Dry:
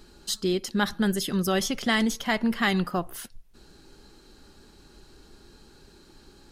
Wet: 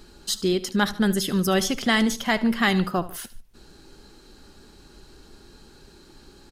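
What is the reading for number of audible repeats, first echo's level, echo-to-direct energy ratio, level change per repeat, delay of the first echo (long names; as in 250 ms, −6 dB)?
2, −17.5 dB, −16.5 dB, −6.5 dB, 74 ms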